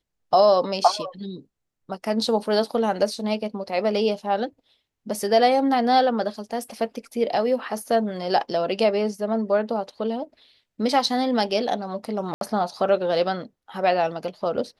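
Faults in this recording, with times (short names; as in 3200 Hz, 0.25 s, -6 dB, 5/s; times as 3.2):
12.34–12.41 gap 72 ms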